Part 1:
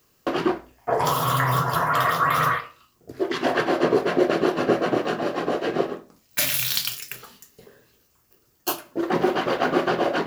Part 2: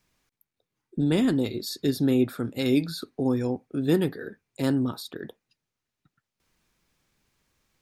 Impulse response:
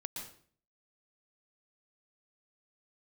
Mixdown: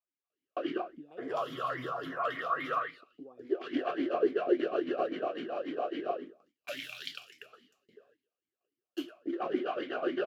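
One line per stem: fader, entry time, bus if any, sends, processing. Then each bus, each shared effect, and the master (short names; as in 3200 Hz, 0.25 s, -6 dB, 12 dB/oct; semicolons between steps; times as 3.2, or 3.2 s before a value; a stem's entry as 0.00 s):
-0.5 dB, 0.30 s, no send, dry
-5.5 dB, 0.00 s, no send, compressor 12:1, threshold -31 dBFS, peak gain reduction 15 dB; bell 940 Hz +14 dB 0.74 oct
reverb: off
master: gate -56 dBFS, range -13 dB; vowel sweep a-i 3.6 Hz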